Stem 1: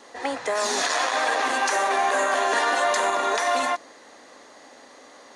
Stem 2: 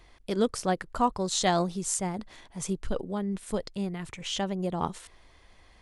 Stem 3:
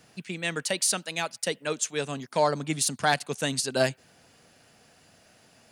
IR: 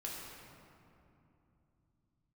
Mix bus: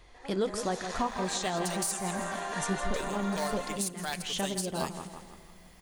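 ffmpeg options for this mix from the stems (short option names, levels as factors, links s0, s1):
-filter_complex "[0:a]dynaudnorm=f=470:g=3:m=2,volume=0.106,asplit=2[s0][s1];[s1]volume=0.266[s2];[1:a]flanger=delay=1.4:depth=5.8:regen=-64:speed=1.3:shape=triangular,volume=1.41,asplit=3[s3][s4][s5];[s4]volume=0.112[s6];[s5]volume=0.335[s7];[2:a]aemphasis=mode=production:type=bsi,acrusher=bits=3:mode=log:mix=0:aa=0.000001,adelay=1000,volume=0.282,asplit=3[s8][s9][s10];[s8]atrim=end=2.12,asetpts=PTS-STARTPTS,afade=t=out:st=2.116:d=0.004:c=hsin[s11];[s9]atrim=start=2.12:end=2.93,asetpts=PTS-STARTPTS,volume=0[s12];[s10]atrim=start=2.93,asetpts=PTS-STARTPTS,afade=t=in:d=0.004:c=hsin[s13];[s11][s12][s13]concat=n=3:v=0:a=1,asplit=3[s14][s15][s16];[s15]volume=0.1[s17];[s16]volume=0.158[s18];[3:a]atrim=start_sample=2205[s19];[s6][s17]amix=inputs=2:normalize=0[s20];[s20][s19]afir=irnorm=-1:irlink=0[s21];[s2][s7][s18]amix=inputs=3:normalize=0,aecho=0:1:163|326|489|652|815|978:1|0.43|0.185|0.0795|0.0342|0.0147[s22];[s0][s3][s14][s21][s22]amix=inputs=5:normalize=0,alimiter=limit=0.1:level=0:latency=1:release=363"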